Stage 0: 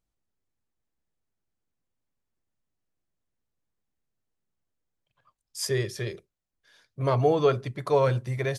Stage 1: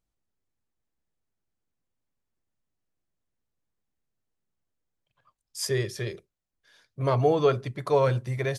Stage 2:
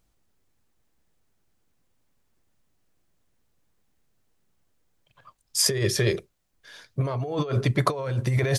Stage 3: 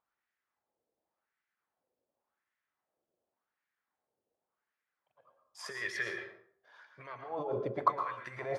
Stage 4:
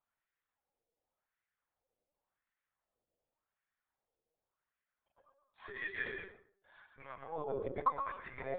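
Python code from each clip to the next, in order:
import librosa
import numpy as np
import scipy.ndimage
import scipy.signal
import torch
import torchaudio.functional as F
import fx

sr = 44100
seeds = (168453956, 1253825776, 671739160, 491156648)

y1 = x
y2 = fx.over_compress(y1, sr, threshold_db=-32.0, ratio=-1.0)
y2 = y2 * librosa.db_to_amplitude(7.0)
y3 = fx.wah_lfo(y2, sr, hz=0.89, low_hz=480.0, high_hz=1900.0, q=3.3)
y3 = fx.rev_plate(y3, sr, seeds[0], rt60_s=0.54, hf_ratio=0.7, predelay_ms=100, drr_db=5.0)
y4 = fx.lpc_vocoder(y3, sr, seeds[1], excitation='pitch_kept', order=16)
y4 = y4 * librosa.db_to_amplitude(-3.5)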